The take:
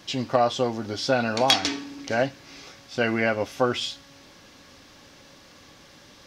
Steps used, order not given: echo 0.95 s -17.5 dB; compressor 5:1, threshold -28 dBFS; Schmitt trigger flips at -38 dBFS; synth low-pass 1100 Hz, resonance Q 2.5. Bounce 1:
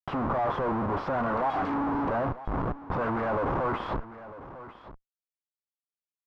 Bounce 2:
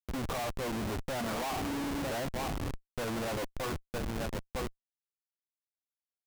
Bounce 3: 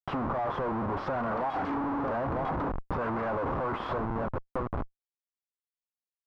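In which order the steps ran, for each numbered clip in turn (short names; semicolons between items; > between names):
Schmitt trigger > echo > compressor > synth low-pass; echo > compressor > synth low-pass > Schmitt trigger; echo > Schmitt trigger > synth low-pass > compressor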